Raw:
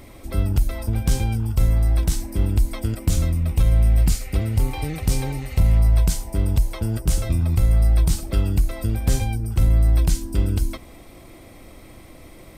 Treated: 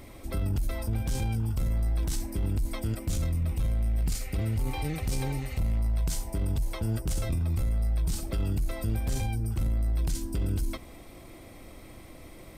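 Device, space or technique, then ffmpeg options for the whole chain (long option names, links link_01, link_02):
soft clipper into limiter: -af "asoftclip=type=tanh:threshold=-10.5dB,alimiter=limit=-19dB:level=0:latency=1:release=11,volume=-3.5dB"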